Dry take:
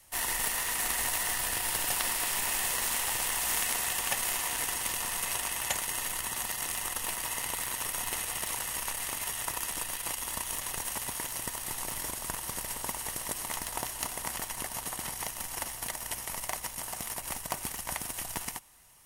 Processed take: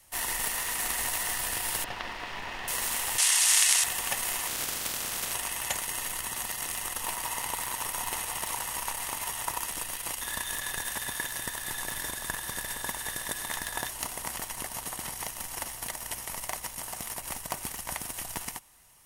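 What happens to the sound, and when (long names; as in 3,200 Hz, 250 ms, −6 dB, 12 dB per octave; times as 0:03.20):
0:01.84–0:02.68: high-frequency loss of the air 240 metres
0:03.18–0:03.84: meter weighting curve ITU-R 468
0:04.46–0:05.31: ceiling on every frequency bin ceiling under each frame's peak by 15 dB
0:07.00–0:09.66: parametric band 920 Hz +6 dB 0.63 octaves
0:10.21–0:13.89: hollow resonant body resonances 1,700/3,600 Hz, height 18 dB, ringing for 40 ms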